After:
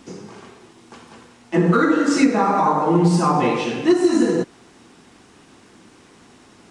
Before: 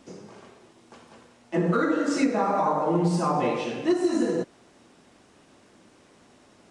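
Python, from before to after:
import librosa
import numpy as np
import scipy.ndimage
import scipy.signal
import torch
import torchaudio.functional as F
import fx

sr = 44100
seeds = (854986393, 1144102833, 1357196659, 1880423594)

y = fx.peak_eq(x, sr, hz=590.0, db=-8.5, octaves=0.38)
y = y * 10.0 ** (8.0 / 20.0)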